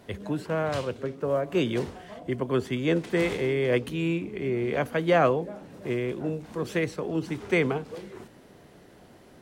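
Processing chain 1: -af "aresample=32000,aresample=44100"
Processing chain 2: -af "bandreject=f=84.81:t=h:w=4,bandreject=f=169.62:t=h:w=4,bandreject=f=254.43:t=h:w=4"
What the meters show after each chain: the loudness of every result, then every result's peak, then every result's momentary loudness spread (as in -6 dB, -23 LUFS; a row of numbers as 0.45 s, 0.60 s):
-27.5 LUFS, -28.0 LUFS; -11.0 dBFS, -11.0 dBFS; 10 LU, 10 LU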